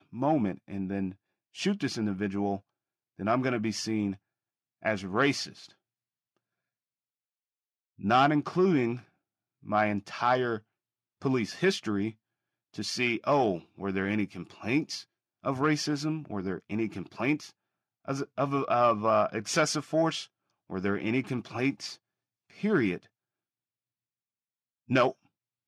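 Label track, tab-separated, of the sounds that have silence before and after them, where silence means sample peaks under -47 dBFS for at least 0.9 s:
7.990000	23.040000	sound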